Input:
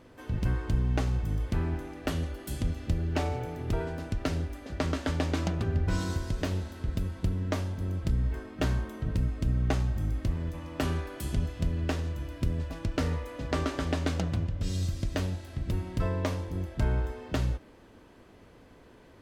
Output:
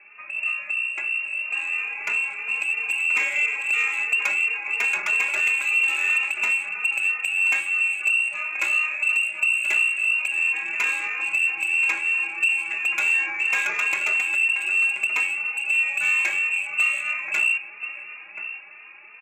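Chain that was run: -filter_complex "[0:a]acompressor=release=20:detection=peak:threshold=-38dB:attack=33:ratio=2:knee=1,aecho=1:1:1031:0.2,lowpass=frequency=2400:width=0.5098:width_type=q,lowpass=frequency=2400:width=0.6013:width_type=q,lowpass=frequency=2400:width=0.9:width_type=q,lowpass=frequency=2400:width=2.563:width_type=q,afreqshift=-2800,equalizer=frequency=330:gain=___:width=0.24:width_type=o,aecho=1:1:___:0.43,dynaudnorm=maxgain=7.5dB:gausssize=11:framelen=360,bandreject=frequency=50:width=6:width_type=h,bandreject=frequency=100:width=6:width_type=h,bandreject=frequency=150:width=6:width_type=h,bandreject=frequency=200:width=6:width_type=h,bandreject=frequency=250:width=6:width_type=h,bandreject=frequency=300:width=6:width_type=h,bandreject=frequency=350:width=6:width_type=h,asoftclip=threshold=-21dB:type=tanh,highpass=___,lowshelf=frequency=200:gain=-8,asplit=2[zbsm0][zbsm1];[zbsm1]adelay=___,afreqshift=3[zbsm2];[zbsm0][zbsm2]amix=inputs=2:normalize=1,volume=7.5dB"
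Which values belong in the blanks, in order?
10.5, 4.9, 140, 3.1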